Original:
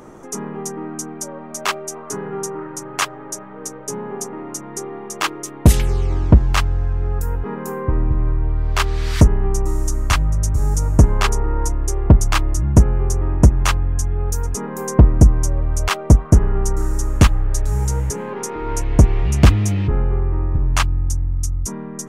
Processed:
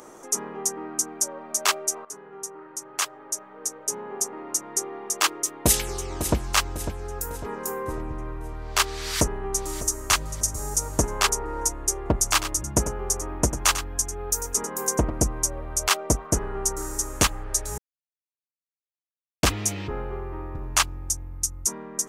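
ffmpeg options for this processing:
-filter_complex "[0:a]asplit=2[a][b];[b]afade=t=in:st=5.32:d=0.01,afade=t=out:st=6.36:d=0.01,aecho=0:1:550|1100|1650|2200|2750:0.316228|0.142302|0.0640361|0.0288163|0.0129673[c];[a][c]amix=inputs=2:normalize=0,asplit=2[d][e];[e]afade=t=in:st=8.93:d=0.01,afade=t=out:st=10.08:d=0.01,aecho=0:1:600|1200|1800|2400:0.199526|0.0798105|0.0319242|0.0127697[f];[d][f]amix=inputs=2:normalize=0,asplit=3[g][h][i];[g]afade=t=out:st=12.24:d=0.02[j];[h]aecho=1:1:96:0.282,afade=t=in:st=12.24:d=0.02,afade=t=out:st=15.12:d=0.02[k];[i]afade=t=in:st=15.12:d=0.02[l];[j][k][l]amix=inputs=3:normalize=0,asplit=4[m][n][o][p];[m]atrim=end=2.05,asetpts=PTS-STARTPTS,afade=t=out:st=2.046:d=0.004:c=hsin:silence=0.211349[q];[n]atrim=start=2.05:end=17.78,asetpts=PTS-STARTPTS,afade=t=in:d=2.68:silence=0.211349,afade=t=out:st=15.726:d=0.004:c=hsin[r];[o]atrim=start=17.78:end=19.43,asetpts=PTS-STARTPTS,volume=0[s];[p]atrim=start=19.43,asetpts=PTS-STARTPTS,afade=t=in:d=0.004:c=hsin[t];[q][r][s][t]concat=n=4:v=0:a=1,bass=f=250:g=-14,treble=f=4k:g=9,volume=-3dB"

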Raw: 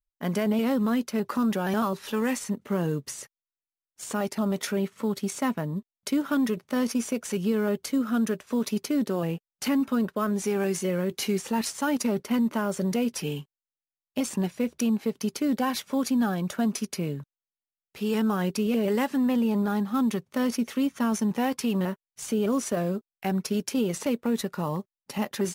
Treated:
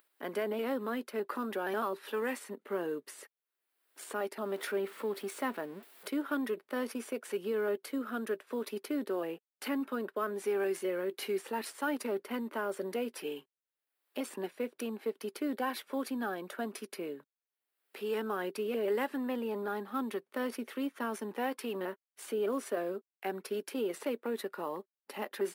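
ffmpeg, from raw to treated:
-filter_complex "[0:a]asettb=1/sr,asplit=3[a][b][c];[a]atrim=end=4.454[d];[b]atrim=start=4.45:end=6.08,asetpts=PTS-STARTPTS,afade=t=in:d=0.004:c=qsin,afade=t=out:st=1.626:d=0.004:c=qsin,aeval=exprs='val(0)+0.5*0.0112*sgn(val(0))':c=same[e];[c]atrim=start=6.076[f];[d][e]acrossfade=d=0.004:c1=hsin:c2=qsin[g];[g][f]acrossfade=d=0.004:c1=qsin:c2=hsin,equalizer=f=400:t=o:w=0.67:g=4,equalizer=f=1.6k:t=o:w=0.67:g=4,equalizer=f=6.3k:t=o:w=0.67:g=-12,acompressor=mode=upward:threshold=-35dB:ratio=2.5,highpass=f=290:w=0.5412,highpass=f=290:w=1.3066,volume=-7dB"

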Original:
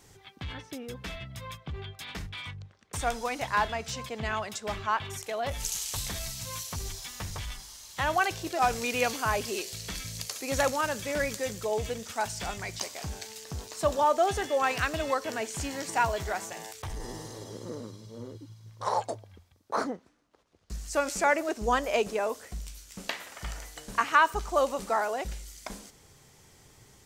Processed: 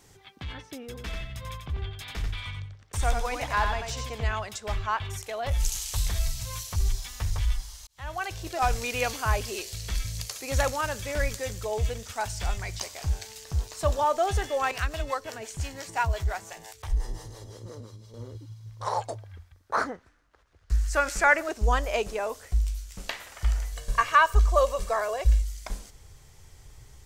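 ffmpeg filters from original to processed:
-filter_complex "[0:a]asettb=1/sr,asplit=3[a][b][c];[a]atrim=end=0.874[d];[b]atrim=start=0.87:end=4.25,asetpts=PTS-STARTPTS,afade=t=in:d=0.004:c=qsin,afade=t=out:st=3.376:d=0.004:c=qsin,aecho=1:1:90|180|270:0.562|0.135|0.0324,atrim=end_sample=149058[e];[c]atrim=start=4.246[f];[d][e]acrossfade=d=0.004:c1=hsin:c2=qsin[g];[g][f]acrossfade=d=0.004:c1=qsin:c2=hsin,asettb=1/sr,asplit=3[h][i][j];[h]atrim=end=14.714[k];[i]atrim=start=14.71:end=18.14,asetpts=PTS-STARTPTS,afade=t=in:d=0.004:c=qsin,afade=t=out:st=3.426:d=0.004:c=qsin,acrossover=split=420[l][m];[l]aeval=exprs='val(0)*(1-0.7/2+0.7/2*cos(2*PI*5.8*n/s))':c=same[n];[m]aeval=exprs='val(0)*(1-0.7/2-0.7/2*cos(2*PI*5.8*n/s))':c=same[o];[n][o]amix=inputs=2:normalize=0[p];[j]atrim=start=18.136[q];[k][p]acrossfade=d=0.004:c1=hsin:c2=qsin[r];[r][q]acrossfade=d=0.004:c1=qsin:c2=hsin,asettb=1/sr,asplit=3[s][t][u];[s]atrim=end=19.184[v];[t]atrim=start=19.18:end=21.48,asetpts=PTS-STARTPTS,afade=t=in:d=0.004:c=qsin,afade=t=out:st=2.296:d=0.004:c=qsin,equalizer=f=1.6k:w=1.5:g=9[w];[u]atrim=start=21.476[x];[v][w]acrossfade=d=0.004:c1=hsin:c2=qsin[y];[y][x]acrossfade=d=0.004:c1=qsin:c2=hsin,asettb=1/sr,asplit=3[z][aa][ab];[z]atrim=end=23.724[ac];[aa]atrim=start=23.72:end=25.42,asetpts=PTS-STARTPTS,afade=t=in:d=0.004:c=qsin,afade=t=out:st=1.696:d=0.004:c=qsin,aecho=1:1:1.8:0.67,atrim=end_sample=74970[ad];[ab]atrim=start=25.416[ae];[ac][ad]acrossfade=d=0.004:c1=hsin:c2=qsin[af];[af][ae]acrossfade=d=0.004:c1=qsin:c2=hsin,asplit=2[ag][ah];[ag]atrim=end=7.87,asetpts=PTS-STARTPTS,afade=t=out:st=7.866:d=0.004:c=hsin[ai];[ah]atrim=start=7.87,asetpts=PTS-STARTPTS,afade=t=in:d=0.7[aj];[ai][aj]concat=n=2:v=0:a=1,asubboost=boost=8.5:cutoff=70"

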